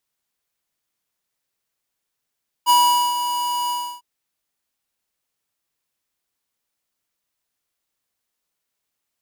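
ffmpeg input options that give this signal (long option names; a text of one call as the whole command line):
ffmpeg -f lavfi -i "aevalsrc='0.224*(2*lt(mod(973*t,1),0.5)-1)':duration=1.352:sample_rate=44100,afade=type=in:duration=0.039,afade=type=out:start_time=0.039:duration=0.437:silence=0.316,afade=type=out:start_time=1.04:duration=0.312" out.wav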